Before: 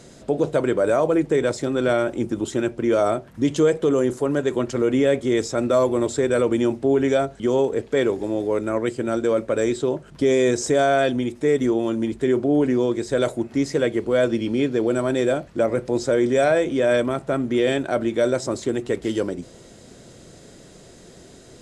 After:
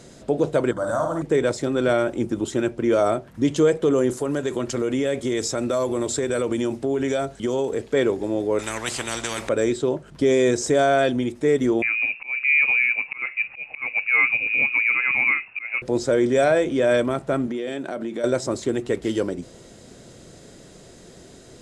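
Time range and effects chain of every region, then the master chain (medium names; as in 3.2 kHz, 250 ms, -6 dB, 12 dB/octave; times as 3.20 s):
0.71–1.22 s: static phaser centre 1 kHz, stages 4 + flutter echo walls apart 9.3 m, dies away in 0.6 s
4.09–7.92 s: treble shelf 3.5 kHz +7 dB + compression 3:1, threshold -20 dBFS
8.59–9.49 s: upward compressor, threshold -27 dBFS + spectrum-flattening compressor 4:1
11.82–15.82 s: slow attack 253 ms + frequency inversion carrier 2.7 kHz
17.47–18.24 s: resonant low shelf 120 Hz -13.5 dB, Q 1.5 + compression 4:1, threshold -26 dBFS
whole clip: none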